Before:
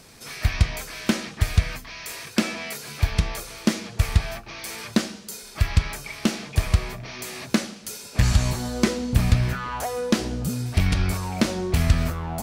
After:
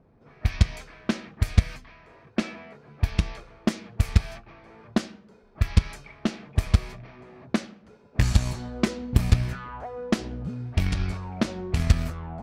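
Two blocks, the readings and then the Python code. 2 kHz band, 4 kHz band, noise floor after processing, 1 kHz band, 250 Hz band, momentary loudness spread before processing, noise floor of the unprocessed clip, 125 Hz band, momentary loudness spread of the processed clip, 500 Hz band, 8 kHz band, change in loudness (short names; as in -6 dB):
-6.0 dB, -6.5 dB, -56 dBFS, -5.5 dB, -3.0 dB, 12 LU, -44 dBFS, -2.0 dB, 17 LU, -5.0 dB, -9.0 dB, -2.0 dB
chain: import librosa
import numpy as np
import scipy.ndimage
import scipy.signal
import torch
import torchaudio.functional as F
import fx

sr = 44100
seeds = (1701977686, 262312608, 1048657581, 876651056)

y = fx.cheby_harmonics(x, sr, harmonics=(3,), levels_db=(-14,), full_scale_db=-5.0)
y = fx.low_shelf(y, sr, hz=220.0, db=3.0)
y = fx.env_lowpass(y, sr, base_hz=790.0, full_db=-18.0)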